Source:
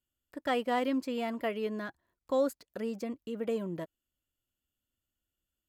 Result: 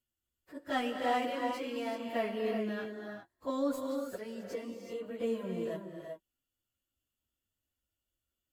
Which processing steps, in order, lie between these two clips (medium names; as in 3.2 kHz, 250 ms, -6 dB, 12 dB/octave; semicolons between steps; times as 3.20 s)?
tracing distortion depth 0.028 ms; plain phase-vocoder stretch 1.5×; gated-style reverb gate 410 ms rising, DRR 2.5 dB